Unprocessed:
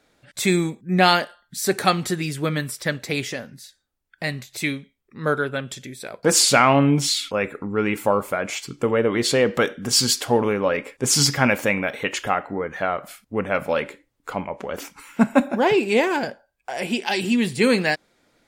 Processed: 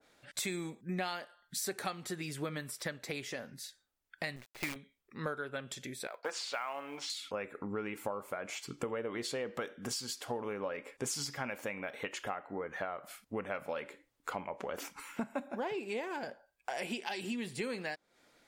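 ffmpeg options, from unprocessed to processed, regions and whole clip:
ffmpeg -i in.wav -filter_complex "[0:a]asettb=1/sr,asplit=3[link_01][link_02][link_03];[link_01]atrim=end=4.364[link_04];[link_02]atrim=start=4.36:end=4.76,asetpts=PTS-STARTPTS,afade=type=in:duration=0.004:curve=qsin,afade=type=out:start_time=0.396:duration=0.004:curve=qsin,lowpass=frequency=2600:width=0.5412,lowpass=frequency=2600:width=1.3066,acrusher=bits=5:dc=4:mix=0:aa=0.000001[link_05];[link_03]atrim=start=4.756[link_06];[link_04][link_05]acrossfade=duration=0.004:curve1=hsin:curve2=qsin[link_07];[link_07][link_06]acrossfade=duration=0.004:curve1=qsin:curve2=hsin,asettb=1/sr,asplit=3[link_08][link_09][link_10];[link_08]atrim=end=6.074[link_11];[link_09]atrim=start=6.07:end=7.1,asetpts=PTS-STARTPTS,afade=type=in:duration=0.004:curve=qsin,afade=type=out:start_time=1.026:duration=0.004:curve=qsin,highpass=690,lowpass=3900,acrusher=bits=7:mode=log:mix=0:aa=0.000001[link_12];[link_10]atrim=start=7.096[link_13];[link_11][link_12]acrossfade=duration=0.004:curve1=hsin:curve2=qsin[link_14];[link_14][link_13]acrossfade=duration=0.004:curve1=qsin:curve2=hsin,lowshelf=frequency=310:gain=-8.5,acompressor=threshold=-33dB:ratio=6,adynamicequalizer=threshold=0.00316:dfrequency=1500:dqfactor=0.7:tfrequency=1500:tqfactor=0.7:attack=5:release=100:ratio=0.375:range=2:mode=cutabove:tftype=highshelf,volume=-2dB" out.wav

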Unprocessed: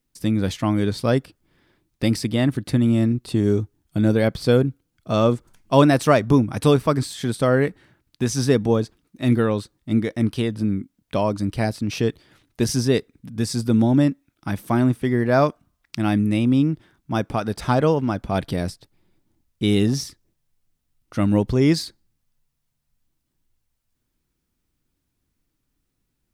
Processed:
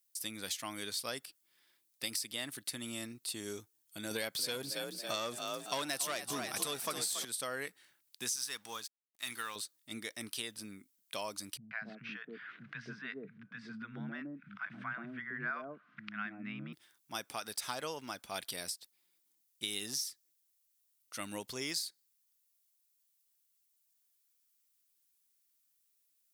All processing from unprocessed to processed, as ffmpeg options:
ffmpeg -i in.wav -filter_complex "[0:a]asettb=1/sr,asplit=3[link_01][link_02][link_03];[link_01]atrim=end=4.114[link_04];[link_02]atrim=start=4.11:end=7.25,asetpts=PTS-STARTPTS,afade=type=in:duration=0.004:curve=qsin,afade=type=out:start_time=3.136:duration=0.004:curve=qsin,asplit=6[link_05][link_06][link_07][link_08][link_09][link_10];[link_06]adelay=278,afreqshift=43,volume=-10.5dB[link_11];[link_07]adelay=556,afreqshift=86,volume=-17.1dB[link_12];[link_08]adelay=834,afreqshift=129,volume=-23.6dB[link_13];[link_09]adelay=1112,afreqshift=172,volume=-30.2dB[link_14];[link_10]adelay=1390,afreqshift=215,volume=-36.7dB[link_15];[link_05][link_11][link_12][link_13][link_14][link_15]amix=inputs=6:normalize=0,atrim=end_sample=138474,acontrast=85[link_16];[link_03]atrim=start=7.246[link_17];[link_04][link_16]acrossfade=duration=0.004:curve1=hsin:curve2=qsin[link_18];[link_18][link_17]acrossfade=duration=0.004:curve1=qsin:curve2=hsin,asettb=1/sr,asplit=3[link_19][link_20][link_21];[link_19]atrim=end=8.364[link_22];[link_20]atrim=start=8.36:end=9.56,asetpts=PTS-STARTPTS,afade=type=in:duration=0.004:curve=qsin,afade=type=out:start_time=1.196:duration=0.004:curve=qsin,lowshelf=frequency=760:width_type=q:width=1.5:gain=-9,aeval=exprs='sgn(val(0))*max(abs(val(0))-0.00282,0)':channel_layout=same[link_23];[link_21]atrim=start=9.556[link_24];[link_22][link_23]acrossfade=duration=0.004:curve1=hsin:curve2=qsin[link_25];[link_25][link_24]acrossfade=duration=0.004:curve1=qsin:curve2=hsin,asettb=1/sr,asplit=3[link_26][link_27][link_28];[link_26]atrim=end=11.574[link_29];[link_27]atrim=start=11.57:end=16.73,asetpts=PTS-STARTPTS,afade=type=in:duration=0.004:curve=qsin,afade=type=out:start_time=5.156:duration=0.004:curve=qsin,acompressor=mode=upward:threshold=-20dB:ratio=2.5:attack=3.2:release=140:knee=2.83:detection=peak,highpass=frequency=140:width=0.5412,highpass=frequency=140:width=1.3066,equalizer=frequency=140:width_type=q:width=4:gain=10,equalizer=frequency=200:width_type=q:width=4:gain=9,equalizer=frequency=360:width_type=q:width=4:gain=-5,equalizer=frequency=540:width_type=q:width=4:gain=-9,equalizer=frequency=850:width_type=q:width=4:gain=-10,equalizer=frequency=1500:width_type=q:width=4:gain=9,lowpass=frequency=2100:width=0.5412,lowpass=frequency=2100:width=1.3066,acrossover=split=200|680[link_30][link_31][link_32];[link_32]adelay=140[link_33];[link_31]adelay=270[link_34];[link_30][link_34][link_33]amix=inputs=3:normalize=0,atrim=end_sample=227556[link_35];[link_28]atrim=start=16.726[link_36];[link_29][link_35]acrossfade=duration=0.004:curve1=hsin:curve2=qsin[link_37];[link_37][link_36]acrossfade=duration=0.004:curve1=qsin:curve2=hsin,aderivative,acompressor=threshold=-37dB:ratio=5,volume=3dB" out.wav

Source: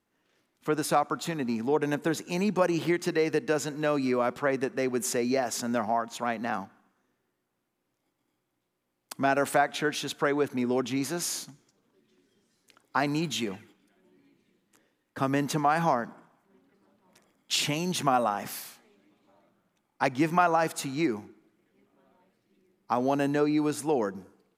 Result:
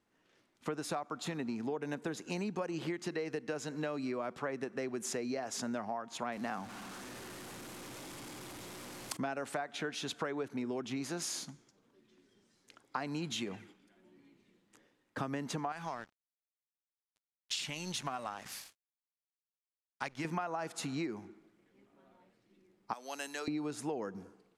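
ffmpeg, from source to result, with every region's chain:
ffmpeg -i in.wav -filter_complex "[0:a]asettb=1/sr,asplit=3[link_01][link_02][link_03];[link_01]atrim=end=6.324[link_04];[link_02]atrim=start=6.32:end=9.17,asetpts=PTS-STARTPTS,afade=type=in:duration=0.004:curve=qsin,afade=type=out:start_time=2.846:duration=0.004:curve=qsin,aeval=exprs='val(0)+0.5*0.00841*sgn(val(0))':channel_layout=same,highshelf=frequency=7900:gain=8.5[link_05];[link_03]atrim=start=9.166[link_06];[link_04][link_05]acrossfade=duration=0.004:curve1=hsin:curve2=qsin[link_07];[link_07][link_06]acrossfade=duration=0.004:curve1=qsin:curve2=hsin,asettb=1/sr,asplit=3[link_08][link_09][link_10];[link_08]atrim=end=15.724[link_11];[link_09]atrim=start=15.72:end=20.25,asetpts=PTS-STARTPTS,afade=type=in:duration=0.004:curve=qsin,afade=type=out:start_time=4.526:duration=0.004:curve=qsin,equalizer=frequency=370:width=0.42:gain=-10.5,aeval=exprs='sgn(val(0))*max(abs(val(0))-0.00473,0)':channel_layout=same[link_12];[link_10]atrim=start=20.246[link_13];[link_11][link_12]acrossfade=duration=0.004:curve1=hsin:curve2=qsin[link_14];[link_14][link_13]acrossfade=duration=0.004:curve1=qsin:curve2=hsin,asettb=1/sr,asplit=3[link_15][link_16][link_17];[link_15]atrim=end=22.934[link_18];[link_16]atrim=start=22.93:end=23.48,asetpts=PTS-STARTPTS,afade=type=in:duration=0.004:curve=qsin,afade=type=out:start_time=0.546:duration=0.004:curve=qsin,highpass=frequency=170:width=0.5412,highpass=frequency=170:width=1.3066,aderivative,acontrast=66[link_19];[link_17]atrim=start=23.476[link_20];[link_18][link_19]acrossfade=duration=0.004:curve1=hsin:curve2=qsin[link_21];[link_21][link_20]acrossfade=duration=0.004:curve1=qsin:curve2=hsin,lowpass=9000,acompressor=threshold=-35dB:ratio=6" out.wav

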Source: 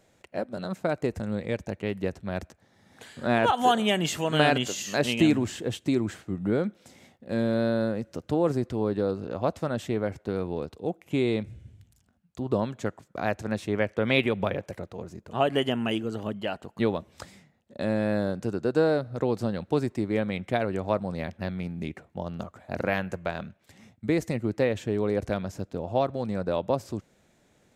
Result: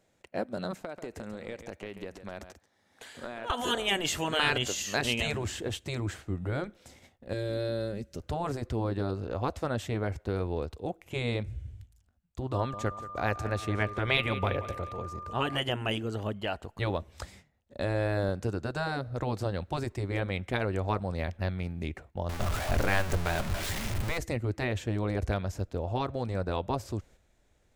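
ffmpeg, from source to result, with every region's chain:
ffmpeg -i in.wav -filter_complex "[0:a]asettb=1/sr,asplit=3[link_01][link_02][link_03];[link_01]atrim=end=0.824[link_04];[link_02]atrim=start=0.82:end=3.5,asetpts=PTS-STARTPTS,afade=type=in:duration=0.004:curve=qsin,afade=type=out:start_time=2.676:duration=0.004:curve=qsin,highpass=frequency=290:poles=1,acompressor=threshold=-33dB:ratio=16:attack=3.2:release=140:knee=1:detection=peak,aecho=1:1:137:0.316,atrim=end_sample=118188[link_05];[link_03]atrim=start=3.496[link_06];[link_04][link_05]acrossfade=duration=0.004:curve1=hsin:curve2=qsin[link_07];[link_07][link_06]acrossfade=duration=0.004:curve1=qsin:curve2=hsin,asettb=1/sr,asplit=3[link_08][link_09][link_10];[link_08]atrim=end=7.334[link_11];[link_09]atrim=start=7.33:end=8.2,asetpts=PTS-STARTPTS,afade=type=in:duration=0.004:curve=qsin,afade=type=out:start_time=0.866:duration=0.004:curve=qsin,equalizer=frequency=1000:width=0.75:gain=-12.5,aecho=1:1:5.1:0.44,atrim=end_sample=38367[link_12];[link_10]atrim=start=8.196[link_13];[link_11][link_12]acrossfade=duration=0.004:curve1=hsin:curve2=qsin[link_14];[link_14][link_13]acrossfade=duration=0.004:curve1=qsin:curve2=hsin,asettb=1/sr,asplit=3[link_15][link_16][link_17];[link_15]atrim=end=12.554[link_18];[link_16]atrim=start=12.55:end=15.57,asetpts=PTS-STARTPTS,afade=type=in:duration=0.004:curve=qsin,afade=type=out:start_time=3.016:duration=0.004:curve=qsin,aeval=exprs='val(0)+0.0112*sin(2*PI*1200*n/s)':channel_layout=same,aecho=1:1:179|358|537|716:0.158|0.0729|0.0335|0.0154,atrim=end_sample=133182[link_19];[link_17]atrim=start=15.566[link_20];[link_18][link_19]acrossfade=duration=0.004:curve1=hsin:curve2=qsin[link_21];[link_21][link_20]acrossfade=duration=0.004:curve1=qsin:curve2=hsin,asettb=1/sr,asplit=3[link_22][link_23][link_24];[link_22]atrim=end=22.294[link_25];[link_23]atrim=start=22.29:end=24.18,asetpts=PTS-STARTPTS,afade=type=in:duration=0.004:curve=qsin,afade=type=out:start_time=1.886:duration=0.004:curve=qsin,aeval=exprs='val(0)+0.5*0.0376*sgn(val(0))':channel_layout=same,bandreject=frequency=500:width=12[link_26];[link_24]atrim=start=24.176[link_27];[link_25][link_26]acrossfade=duration=0.004:curve1=hsin:curve2=qsin[link_28];[link_28][link_27]acrossfade=duration=0.004:curve1=qsin:curve2=hsin,agate=range=-7dB:threshold=-53dB:ratio=16:detection=peak,afftfilt=real='re*lt(hypot(re,im),0.355)':imag='im*lt(hypot(re,im),0.355)':win_size=1024:overlap=0.75,asubboost=boost=10:cutoff=54" out.wav

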